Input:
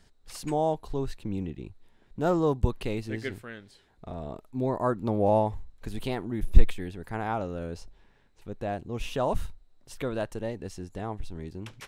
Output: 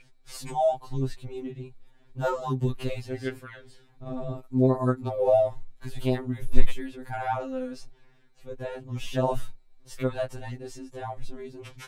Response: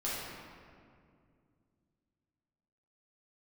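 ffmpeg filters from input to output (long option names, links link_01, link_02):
-filter_complex "[0:a]aeval=exprs='val(0)+0.00794*sin(2*PI*2400*n/s)':channel_layout=same,asettb=1/sr,asplit=3[link_01][link_02][link_03];[link_01]atrim=end=3.574[link_04];[link_02]atrim=start=3.57:end=4.42,asetpts=PTS-STARTPTS,afade=type=in:duration=0.004:curve=qsin,afade=type=out:start_time=0.846:duration=0.004:curve=qsin,lowshelf=frequency=220:gain=10[link_05];[link_03]atrim=start=4.416[link_06];[link_04][link_05]acrossfade=duration=0.004:curve1=hsin:curve2=qsin[link_07];[link_07][link_06]acrossfade=duration=0.004:curve1=qsin:curve2=hsin,afftfilt=real='re*2.45*eq(mod(b,6),0)':imag='im*2.45*eq(mod(b,6),0)':win_size=2048:overlap=0.75,volume=3dB"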